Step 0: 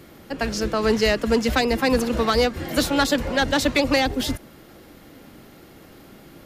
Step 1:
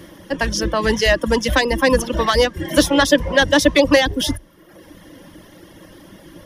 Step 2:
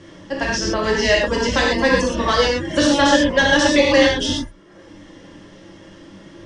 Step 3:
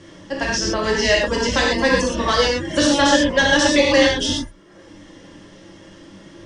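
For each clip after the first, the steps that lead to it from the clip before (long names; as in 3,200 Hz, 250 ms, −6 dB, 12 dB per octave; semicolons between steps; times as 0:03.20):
reverb reduction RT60 0.92 s; EQ curve with evenly spaced ripples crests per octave 1.2, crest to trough 9 dB; level +5 dB
Butterworth low-pass 8,600 Hz 72 dB per octave; reverb whose tail is shaped and stops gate 150 ms flat, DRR −3.5 dB; level −4.5 dB
high-shelf EQ 5,800 Hz +6 dB; level −1 dB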